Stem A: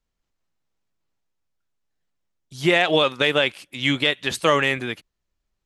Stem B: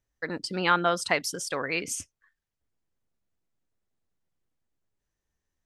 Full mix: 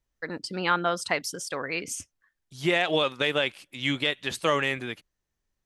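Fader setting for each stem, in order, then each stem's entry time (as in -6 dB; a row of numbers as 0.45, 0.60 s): -6.0, -1.5 dB; 0.00, 0.00 s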